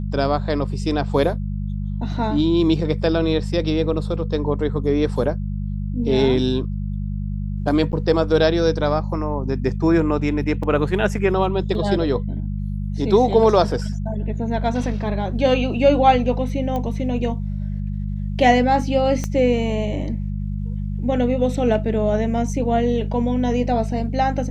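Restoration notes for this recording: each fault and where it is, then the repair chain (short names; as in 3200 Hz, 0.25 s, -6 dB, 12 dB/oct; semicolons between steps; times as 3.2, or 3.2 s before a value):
hum 50 Hz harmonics 4 -25 dBFS
7.92–7.93 gap 9.5 ms
10.63 gap 3.9 ms
16.76 pop -15 dBFS
19.24 pop -12 dBFS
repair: de-click; de-hum 50 Hz, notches 4; interpolate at 7.92, 9.5 ms; interpolate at 10.63, 3.9 ms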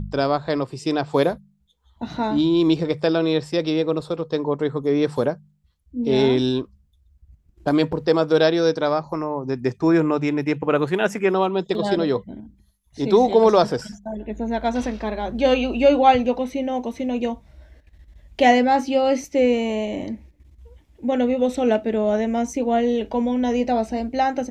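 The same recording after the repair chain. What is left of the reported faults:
19.24 pop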